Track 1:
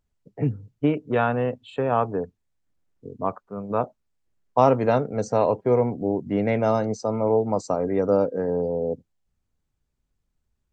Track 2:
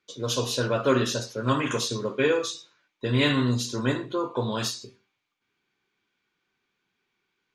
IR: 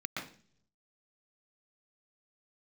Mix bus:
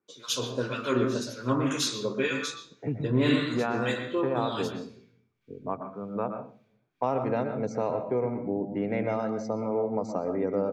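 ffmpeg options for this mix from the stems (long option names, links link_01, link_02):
-filter_complex "[0:a]lowpass=frequency=6100:width=0.5412,lowpass=frequency=6100:width=1.3066,equalizer=frequency=4300:width_type=o:width=1.1:gain=-4.5,acompressor=threshold=-23dB:ratio=2,adelay=2450,volume=-5.5dB,asplit=2[link_01][link_02];[link_02]volume=-6.5dB[link_03];[1:a]acrossover=split=1200[link_04][link_05];[link_04]aeval=exprs='val(0)*(1-1/2+1/2*cos(2*PI*1.9*n/s))':channel_layout=same[link_06];[link_05]aeval=exprs='val(0)*(1-1/2-1/2*cos(2*PI*1.9*n/s))':channel_layout=same[link_07];[link_06][link_07]amix=inputs=2:normalize=0,volume=-1.5dB,asplit=2[link_08][link_09];[link_09]volume=-5dB[link_10];[2:a]atrim=start_sample=2205[link_11];[link_03][link_10]amix=inputs=2:normalize=0[link_12];[link_12][link_11]afir=irnorm=-1:irlink=0[link_13];[link_01][link_08][link_13]amix=inputs=3:normalize=0"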